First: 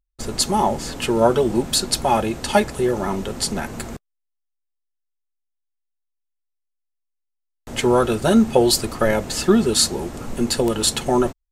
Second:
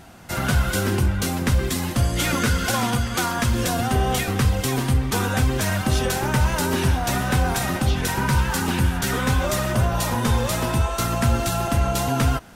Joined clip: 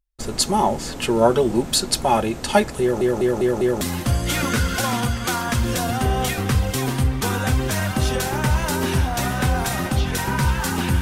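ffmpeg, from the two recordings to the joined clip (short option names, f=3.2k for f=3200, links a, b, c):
-filter_complex "[0:a]apad=whole_dur=11.01,atrim=end=11.01,asplit=5[a][b][c][d][e];[a]atrim=end=3.012[f];[b]atrim=start=2.808:end=3.012[g];[c]atrim=start=2.808:end=3.012[h];[d]atrim=start=2.808:end=3.012[i];[e]atrim=start=2.808:end=3.012[j];[1:a]atrim=start=1.708:end=8.91[k];[f][g]acrossfade=d=0.004:c1=hsin:c2=hsin[l];[l][h]acrossfade=d=0.004:c1=hsin:c2=hsin[m];[m][i]acrossfade=d=0.004:c1=hsin:c2=hsin[n];[n][j]acrossfade=d=0.004:c1=hsin:c2=hsin[o];[o][k]acrossfade=d=0.004:c1=hsin:c2=hsin"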